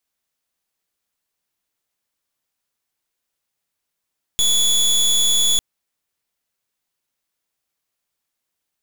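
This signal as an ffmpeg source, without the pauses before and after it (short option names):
-f lavfi -i "aevalsrc='0.158*(2*lt(mod(3410*t,1),0.24)-1)':d=1.2:s=44100"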